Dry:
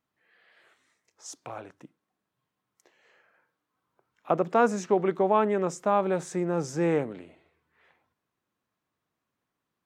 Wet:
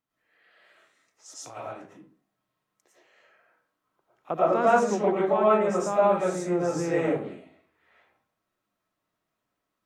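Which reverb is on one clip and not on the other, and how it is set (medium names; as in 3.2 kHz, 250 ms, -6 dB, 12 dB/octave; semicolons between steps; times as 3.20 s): algorithmic reverb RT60 0.46 s, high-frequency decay 0.6×, pre-delay 70 ms, DRR -8 dB; trim -6 dB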